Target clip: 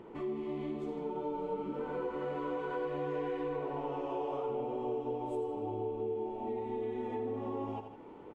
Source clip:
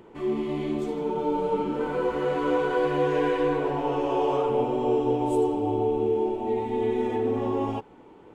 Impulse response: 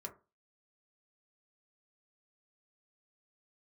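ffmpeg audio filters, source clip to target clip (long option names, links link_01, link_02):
-af "highshelf=frequency=3900:gain=-12,bandreject=frequency=1600:width=13,aecho=1:1:83|158:0.316|0.133,acompressor=threshold=-39dB:ratio=2.5,lowshelf=frequency=110:gain=-4.5"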